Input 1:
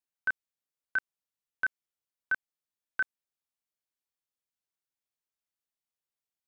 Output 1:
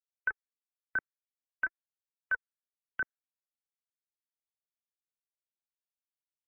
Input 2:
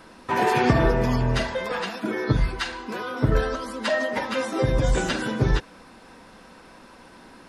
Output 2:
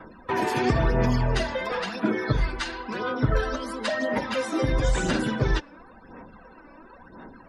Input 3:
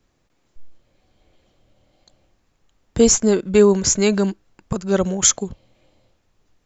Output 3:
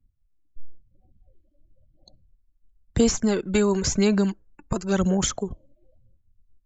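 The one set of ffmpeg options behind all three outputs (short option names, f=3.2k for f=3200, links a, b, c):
-filter_complex "[0:a]aphaser=in_gain=1:out_gain=1:delay=3.5:decay=0.47:speed=0.97:type=sinusoidal,acrossover=split=330|740|4900[a][b][c][d];[a]acompressor=threshold=-20dB:ratio=4[e];[b]acompressor=threshold=-31dB:ratio=4[f];[c]acompressor=threshold=-29dB:ratio=4[g];[d]acompressor=threshold=-35dB:ratio=4[h];[e][f][g][h]amix=inputs=4:normalize=0,afftdn=nr=32:nf=-49"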